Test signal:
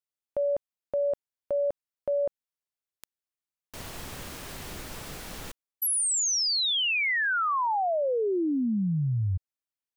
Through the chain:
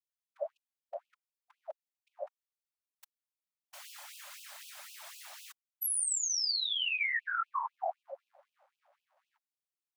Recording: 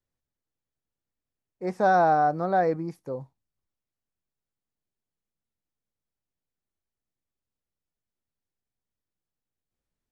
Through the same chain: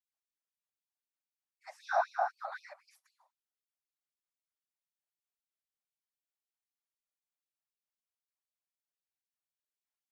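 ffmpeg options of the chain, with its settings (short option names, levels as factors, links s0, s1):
-af "afftfilt=real='hypot(re,im)*cos(2*PI*random(0))':imag='hypot(re,im)*sin(2*PI*random(1))':win_size=512:overlap=0.75,afftfilt=real='re*gte(b*sr/1024,530*pow(2500/530,0.5+0.5*sin(2*PI*3.9*pts/sr)))':imag='im*gte(b*sr/1024,530*pow(2500/530,0.5+0.5*sin(2*PI*3.9*pts/sr)))':win_size=1024:overlap=0.75"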